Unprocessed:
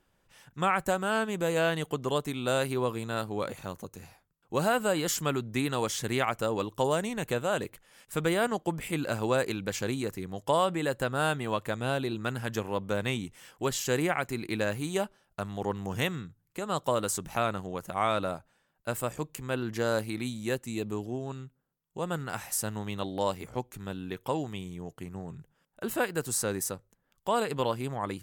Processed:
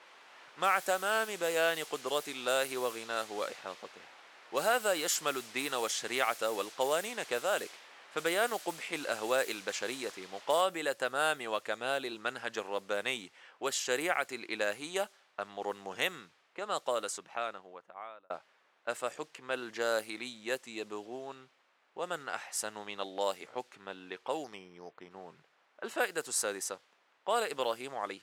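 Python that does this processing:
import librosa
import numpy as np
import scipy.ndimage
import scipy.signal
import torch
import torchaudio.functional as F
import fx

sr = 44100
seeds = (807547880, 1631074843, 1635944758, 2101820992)

y = fx.noise_floor_step(x, sr, seeds[0], at_s=10.61, before_db=-46, after_db=-60, tilt_db=0.0)
y = fx.resample_bad(y, sr, factor=8, down='filtered', up='hold', at=(24.44, 25.11))
y = fx.edit(y, sr, fx.fade_out_span(start_s=16.64, length_s=1.66), tone=tone)
y = fx.env_lowpass(y, sr, base_hz=1700.0, full_db=-24.5)
y = scipy.signal.sosfilt(scipy.signal.butter(2, 520.0, 'highpass', fs=sr, output='sos'), y)
y = fx.dynamic_eq(y, sr, hz=980.0, q=4.5, threshold_db=-47.0, ratio=4.0, max_db=-6)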